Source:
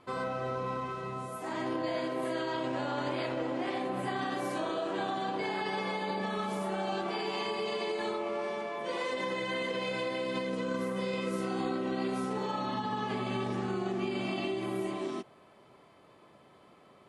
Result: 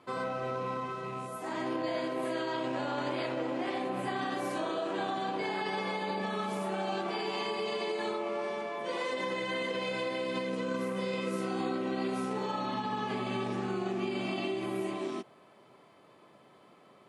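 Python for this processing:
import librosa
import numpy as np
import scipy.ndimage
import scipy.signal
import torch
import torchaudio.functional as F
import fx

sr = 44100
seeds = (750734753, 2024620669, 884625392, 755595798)

y = fx.rattle_buzz(x, sr, strikes_db=-41.0, level_db=-43.0)
y = scipy.signal.sosfilt(scipy.signal.butter(2, 120.0, 'highpass', fs=sr, output='sos'), y)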